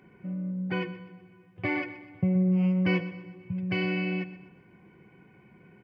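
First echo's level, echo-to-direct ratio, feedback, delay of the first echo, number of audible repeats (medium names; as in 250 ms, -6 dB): -14.5 dB, -13.5 dB, 42%, 125 ms, 3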